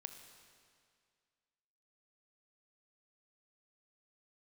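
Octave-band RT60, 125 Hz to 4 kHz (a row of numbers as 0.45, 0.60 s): 2.1, 2.1, 2.1, 2.1, 2.1, 2.0 s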